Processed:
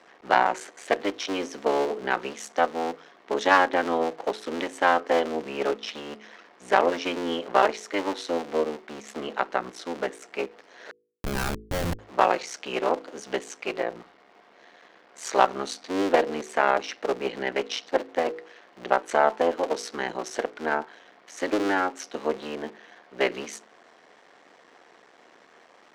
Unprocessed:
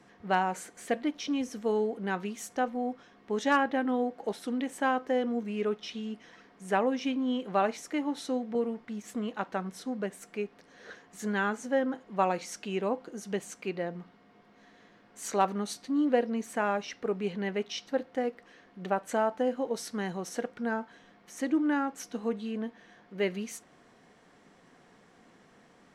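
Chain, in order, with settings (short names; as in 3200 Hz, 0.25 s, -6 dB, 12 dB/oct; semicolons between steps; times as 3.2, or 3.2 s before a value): cycle switcher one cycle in 3, muted; added harmonics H 4 -21 dB, 8 -39 dB, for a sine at -12.5 dBFS; three-band isolator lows -21 dB, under 320 Hz, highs -16 dB, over 7200 Hz; 10.91–11.99 Schmitt trigger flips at -33.5 dBFS; de-hum 53.74 Hz, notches 9; gain +8.5 dB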